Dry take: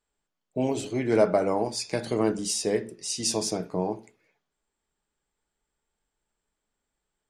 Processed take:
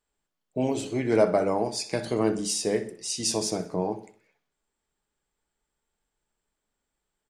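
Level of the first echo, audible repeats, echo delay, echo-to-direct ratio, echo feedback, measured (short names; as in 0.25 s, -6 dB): -15.5 dB, 3, 63 ms, -14.5 dB, 46%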